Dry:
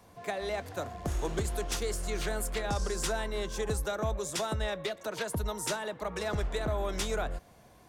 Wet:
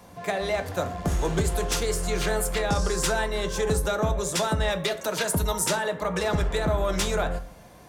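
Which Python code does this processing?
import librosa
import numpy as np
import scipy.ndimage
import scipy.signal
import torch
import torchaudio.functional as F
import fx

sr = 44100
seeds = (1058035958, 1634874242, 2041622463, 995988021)

y = fx.high_shelf(x, sr, hz=4400.0, db=7.0, at=(4.7, 5.64))
y = 10.0 ** (-21.5 / 20.0) * np.tanh(y / 10.0 ** (-21.5 / 20.0))
y = fx.rev_fdn(y, sr, rt60_s=0.5, lf_ratio=1.0, hf_ratio=0.6, size_ms=34.0, drr_db=6.5)
y = F.gain(torch.from_numpy(y), 7.5).numpy()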